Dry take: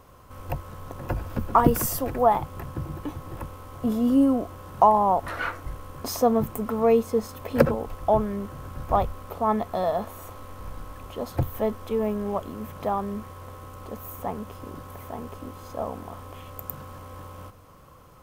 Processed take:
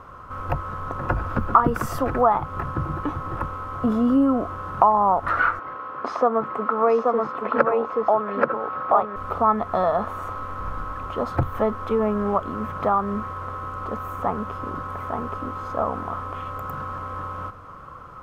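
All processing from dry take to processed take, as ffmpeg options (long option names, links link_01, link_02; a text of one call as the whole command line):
ffmpeg -i in.wav -filter_complex "[0:a]asettb=1/sr,asplit=3[link_01][link_02][link_03];[link_01]atrim=end=5.594[link_04];[link_02]atrim=start=5.59:end=9.16,asetpts=PTS-STARTPTS,afade=type=in:duration=0.004:curve=qsin,afade=type=out:start_time=3.566:duration=0.004:curve=qsin,highpass=330,lowpass=3100,aecho=1:1:829:0.668,atrim=end_sample=157437[link_05];[link_03]atrim=start=9.156[link_06];[link_04][link_05]acrossfade=duration=0.004:curve1=hsin:curve2=qsin[link_07];[link_07][link_06]acrossfade=duration=0.004:curve1=qsin:curve2=hsin,equalizer=frequency=1300:width=2.2:gain=14,acompressor=threshold=-24dB:ratio=2,aemphasis=mode=reproduction:type=75fm,volume=4.5dB" out.wav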